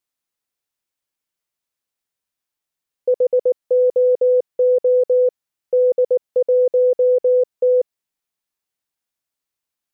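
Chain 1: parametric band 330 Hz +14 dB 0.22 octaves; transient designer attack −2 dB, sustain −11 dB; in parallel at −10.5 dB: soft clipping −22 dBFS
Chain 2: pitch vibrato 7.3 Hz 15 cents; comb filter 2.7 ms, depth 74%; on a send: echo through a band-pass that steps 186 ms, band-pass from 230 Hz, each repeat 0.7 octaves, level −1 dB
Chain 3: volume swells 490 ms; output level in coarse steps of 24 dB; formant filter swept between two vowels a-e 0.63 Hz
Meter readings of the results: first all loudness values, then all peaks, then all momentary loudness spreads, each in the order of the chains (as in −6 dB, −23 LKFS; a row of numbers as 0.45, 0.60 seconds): −16.5, −20.5, −34.5 LKFS; −9.5, −10.0, −21.5 dBFS; 5, 3, 17 LU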